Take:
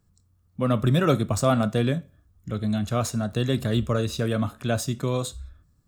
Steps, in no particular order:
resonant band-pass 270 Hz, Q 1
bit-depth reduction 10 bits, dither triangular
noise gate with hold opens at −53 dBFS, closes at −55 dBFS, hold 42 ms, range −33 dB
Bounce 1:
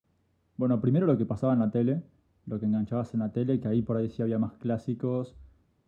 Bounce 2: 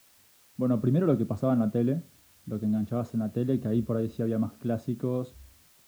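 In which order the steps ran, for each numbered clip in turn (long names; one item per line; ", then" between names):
bit-depth reduction, then noise gate with hold, then resonant band-pass
noise gate with hold, then resonant band-pass, then bit-depth reduction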